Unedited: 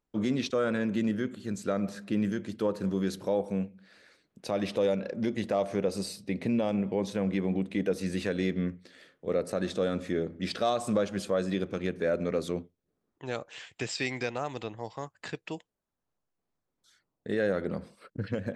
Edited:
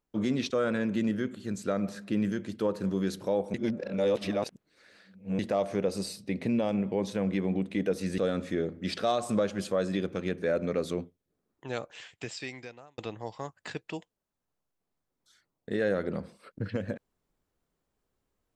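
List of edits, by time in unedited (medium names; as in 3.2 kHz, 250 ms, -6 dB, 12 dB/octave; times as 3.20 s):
3.54–5.39 s: reverse
8.18–9.76 s: delete
13.36–14.56 s: fade out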